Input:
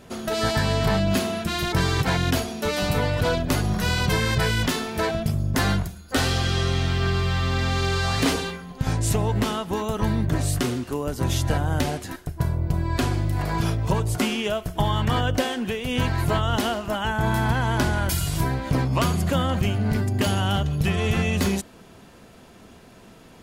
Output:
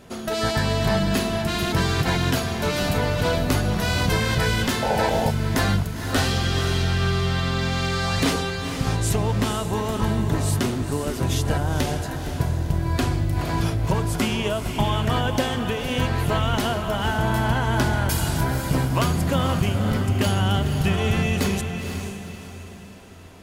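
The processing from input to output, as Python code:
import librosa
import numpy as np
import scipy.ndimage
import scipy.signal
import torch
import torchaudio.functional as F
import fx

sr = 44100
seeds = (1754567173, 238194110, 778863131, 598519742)

y = fx.echo_diffused(x, sr, ms=494, feedback_pct=41, wet_db=-7)
y = fx.spec_paint(y, sr, seeds[0], shape='noise', start_s=4.82, length_s=0.49, low_hz=410.0, high_hz=940.0, level_db=-24.0)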